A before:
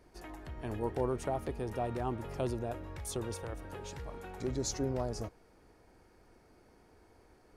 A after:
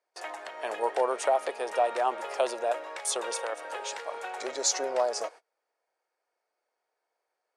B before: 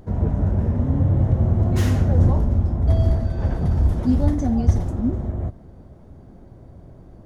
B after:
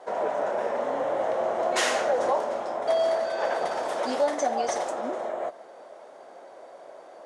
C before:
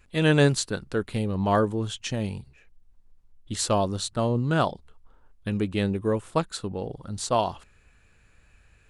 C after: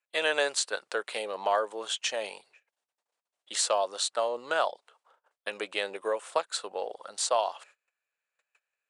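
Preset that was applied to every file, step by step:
noise gate −51 dBFS, range −28 dB
elliptic band-pass filter 560–9,200 Hz, stop band 80 dB
downward compressor 2 to 1, threshold −33 dBFS
normalise the peak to −12 dBFS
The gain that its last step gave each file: +13.0, +11.5, +5.0 decibels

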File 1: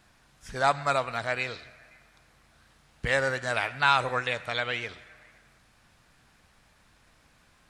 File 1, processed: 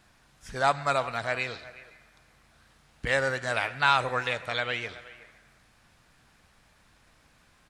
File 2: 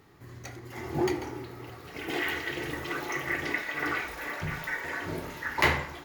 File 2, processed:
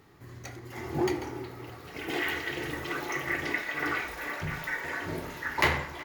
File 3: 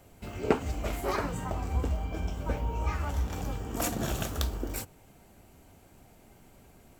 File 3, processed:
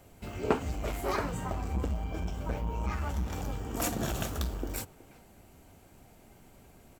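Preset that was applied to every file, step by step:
far-end echo of a speakerphone 370 ms, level −18 dB
saturating transformer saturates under 590 Hz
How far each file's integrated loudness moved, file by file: 0.0, −0.5, −1.5 LU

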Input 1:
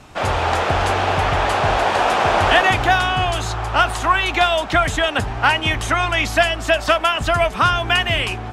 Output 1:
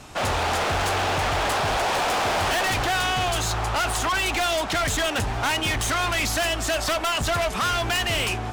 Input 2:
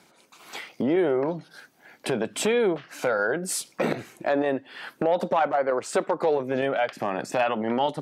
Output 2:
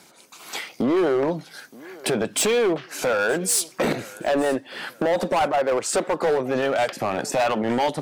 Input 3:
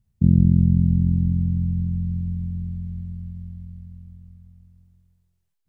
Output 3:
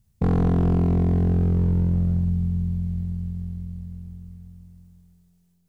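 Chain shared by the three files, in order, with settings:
bass and treble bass −1 dB, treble +6 dB
gain into a clipping stage and back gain 21.5 dB
feedback echo with a high-pass in the loop 922 ms, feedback 36%, high-pass 160 Hz, level −21 dB
loudness normalisation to −23 LKFS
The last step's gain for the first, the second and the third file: 0.0, +4.5, +5.0 decibels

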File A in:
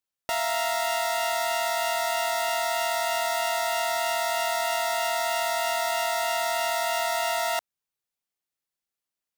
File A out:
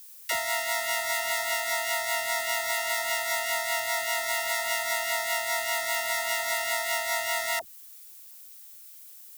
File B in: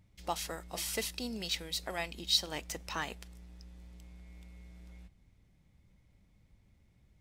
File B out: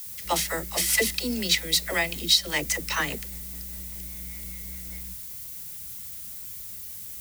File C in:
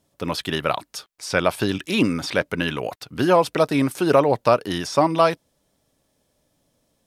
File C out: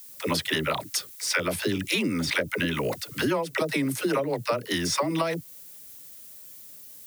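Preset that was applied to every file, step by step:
parametric band 2,000 Hz +8.5 dB 0.28 octaves
notch filter 730 Hz, Q 12
rotating-speaker cabinet horn 5 Hz
high-pass filter 46 Hz
all-pass dispersion lows, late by 68 ms, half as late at 380 Hz
background noise blue −58 dBFS
high-shelf EQ 6,200 Hz +8.5 dB
downward compressor 12 to 1, threshold −27 dBFS
loudness normalisation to −27 LKFS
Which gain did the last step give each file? +2.5, +11.5, +4.5 decibels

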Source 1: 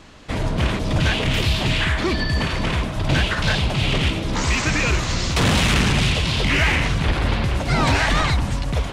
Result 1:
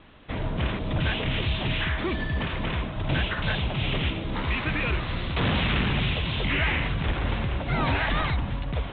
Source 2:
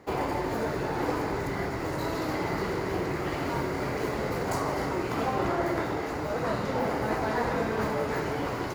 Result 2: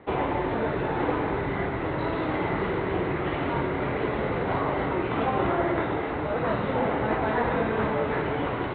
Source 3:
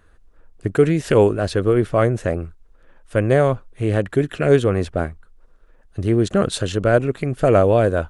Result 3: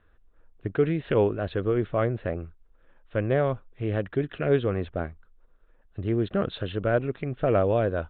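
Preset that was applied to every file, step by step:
Butterworth low-pass 3,800 Hz 96 dB per octave
loudness normalisation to −27 LKFS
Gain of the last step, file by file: −6.5, +3.0, −8.0 decibels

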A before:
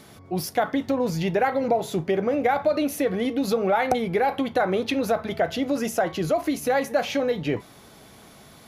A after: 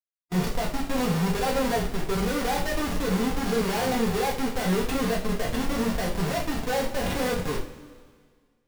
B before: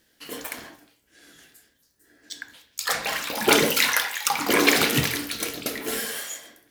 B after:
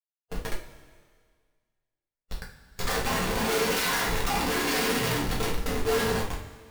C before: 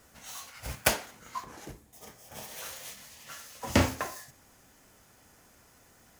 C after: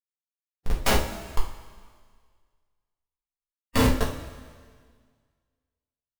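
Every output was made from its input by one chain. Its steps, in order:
comparator with hysteresis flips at −26 dBFS
coupled-rooms reverb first 0.26 s, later 1.8 s, from −18 dB, DRR −2.5 dB
harmonic and percussive parts rebalanced percussive −8 dB
loudness normalisation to −27 LKFS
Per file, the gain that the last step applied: −2.5, −1.5, +18.0 decibels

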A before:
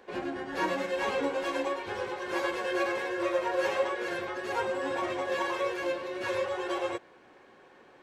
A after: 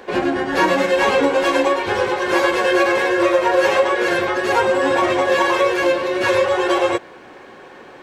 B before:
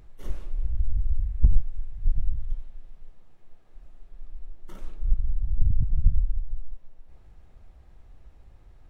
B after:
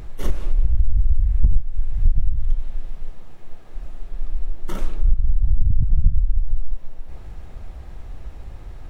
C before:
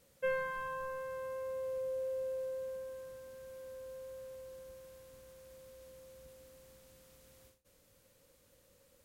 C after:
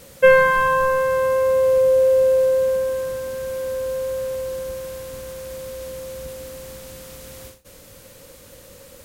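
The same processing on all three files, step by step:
downward compressor 4 to 1, threshold −27 dBFS
normalise the peak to −3 dBFS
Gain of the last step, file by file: +15.5, +15.5, +22.5 decibels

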